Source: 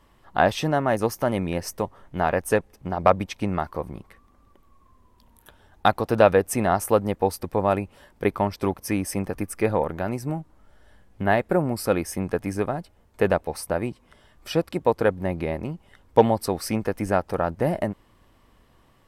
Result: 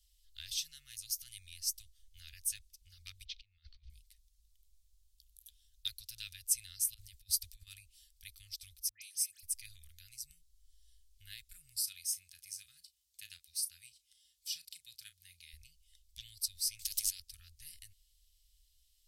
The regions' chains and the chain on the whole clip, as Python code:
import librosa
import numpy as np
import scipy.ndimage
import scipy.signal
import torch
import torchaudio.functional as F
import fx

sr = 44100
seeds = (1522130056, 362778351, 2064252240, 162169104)

y = fx.chain(x, sr, fx.cheby2_lowpass(hz=11000.0, order=4, stop_db=60),
    fx.over_compress(threshold_db=-37.0, ratio=-1.0), at=(3.25, 3.9))
y = fx.chain(y, sr, fx.over_compress(threshold_db=-28.0, ratio=-1.0),
    fx.peak_eq(hz=250.0, db=6.5, octaves=0.9),
    fx.transient(attack_db=3, sustain_db=-1), at=(6.94, 7.67))
y = fx.chain(y, sr, fx.highpass(hz=330.0, slope=12),
    fx.dispersion(late='highs', ms=128.0, hz=1800.0), at=(8.89, 9.43))
y = fx.chain(y, sr, fx.highpass(hz=160.0, slope=12),
    fx.doubler(ms=35.0, db=-13), at=(11.79, 15.53))
y = fx.chain(y, sr, fx.over_compress(threshold_db=-26.0, ratio=-1.0),
    fx.spectral_comp(ratio=2.0), at=(16.79, 17.2))
y = scipy.signal.sosfilt(scipy.signal.cheby2(4, 80, [240.0, 910.0], 'bandstop', fs=sr, output='sos'), y)
y = fx.low_shelf(y, sr, hz=240.0, db=-8.5)